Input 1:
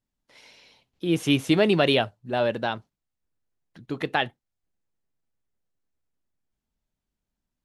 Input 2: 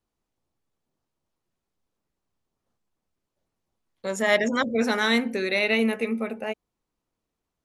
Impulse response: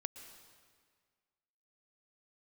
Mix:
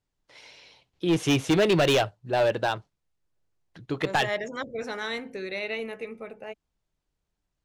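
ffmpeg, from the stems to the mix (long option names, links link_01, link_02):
-filter_complex "[0:a]volume=2.5dB[link_01];[1:a]lowshelf=frequency=280:gain=8,volume=-9.5dB[link_02];[link_01][link_02]amix=inputs=2:normalize=0,lowpass=8500,equalizer=frequency=230:width_type=o:width=0.24:gain=-14.5,volume=17dB,asoftclip=hard,volume=-17dB"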